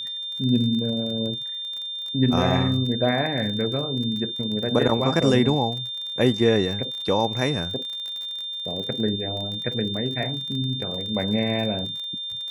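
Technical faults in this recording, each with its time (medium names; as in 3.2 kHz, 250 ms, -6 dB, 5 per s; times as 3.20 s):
crackle 32 per s -30 dBFS
whine 3.6 kHz -29 dBFS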